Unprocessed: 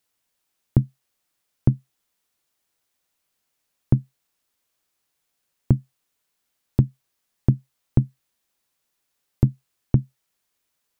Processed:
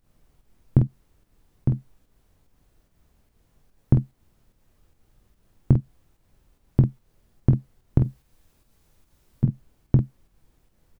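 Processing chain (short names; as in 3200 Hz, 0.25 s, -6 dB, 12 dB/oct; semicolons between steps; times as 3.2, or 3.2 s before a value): 7.98–9.44 negative-ratio compressor -22 dBFS, ratio -1; added noise brown -60 dBFS; pump 146 bpm, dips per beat 1, -11 dB, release 0.131 s; early reflections 22 ms -12 dB, 48 ms -6.5 dB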